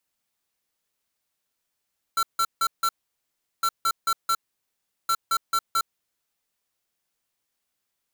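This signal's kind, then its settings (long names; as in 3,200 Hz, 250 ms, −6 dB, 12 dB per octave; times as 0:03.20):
beeps in groups square 1,350 Hz, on 0.06 s, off 0.16 s, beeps 4, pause 0.74 s, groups 3, −22 dBFS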